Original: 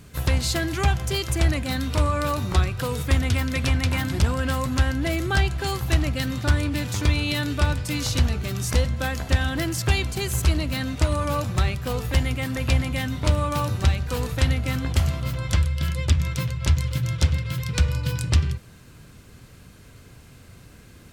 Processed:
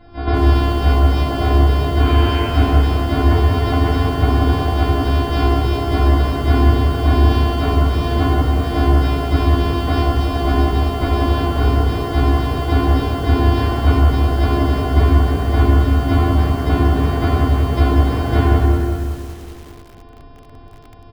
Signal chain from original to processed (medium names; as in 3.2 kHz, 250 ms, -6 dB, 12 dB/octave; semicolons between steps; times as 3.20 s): sorted samples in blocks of 128 samples; low-pass 4.3 kHz 12 dB/octave; hum notches 60/120/180/240/300/360/420 Hz; comb 2.7 ms, depth 42%; 1.97–2.48 s: mains buzz 100 Hz, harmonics 33, -34 dBFS -1 dB/octave; loudest bins only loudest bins 64; two-band feedback delay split 630 Hz, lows 252 ms, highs 152 ms, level -14 dB; reverberation RT60 1.5 s, pre-delay 3 ms, DRR -6.5 dB; bit-crushed delay 188 ms, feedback 55%, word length 6-bit, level -5 dB; trim -1.5 dB